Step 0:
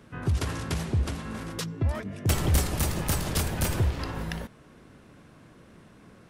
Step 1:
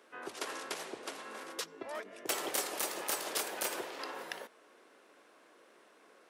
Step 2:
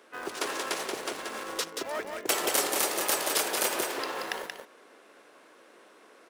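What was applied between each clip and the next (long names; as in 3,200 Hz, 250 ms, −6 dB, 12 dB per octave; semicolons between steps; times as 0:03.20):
high-pass filter 380 Hz 24 dB per octave; level −4 dB
single-tap delay 180 ms −5 dB; in parallel at −10.5 dB: bit reduction 7 bits; on the sum: level +5 dB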